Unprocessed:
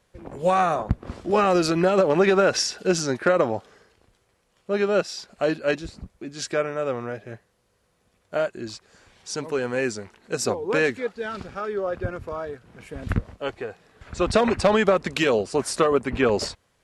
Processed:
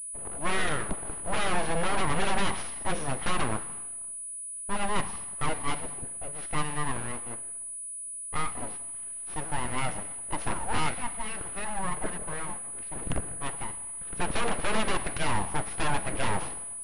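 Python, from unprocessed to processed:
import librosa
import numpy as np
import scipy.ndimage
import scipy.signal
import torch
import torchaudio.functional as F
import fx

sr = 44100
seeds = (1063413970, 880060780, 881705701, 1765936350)

y = scipy.ndimage.median_filter(x, 9, mode='constant')
y = 10.0 ** (-15.5 / 20.0) * (np.abs((y / 10.0 ** (-15.5 / 20.0) + 3.0) % 4.0 - 2.0) - 1.0)
y = fx.rev_plate(y, sr, seeds[0], rt60_s=1.1, hf_ratio=0.9, predelay_ms=0, drr_db=9.5)
y = np.abs(y)
y = fx.pwm(y, sr, carrier_hz=9900.0)
y = y * 10.0 ** (-2.5 / 20.0)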